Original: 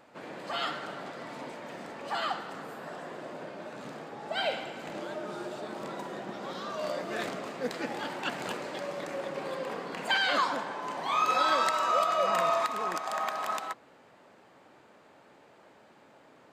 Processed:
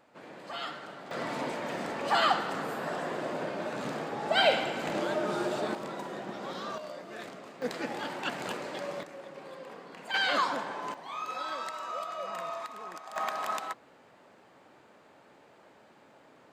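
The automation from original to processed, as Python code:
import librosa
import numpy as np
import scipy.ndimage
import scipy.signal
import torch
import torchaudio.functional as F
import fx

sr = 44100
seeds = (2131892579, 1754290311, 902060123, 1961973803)

y = fx.gain(x, sr, db=fx.steps((0.0, -5.0), (1.11, 7.0), (5.75, 0.0), (6.78, -8.5), (7.62, -0.5), (9.03, -9.5), (10.14, -0.5), (10.94, -10.5), (13.16, -0.5)))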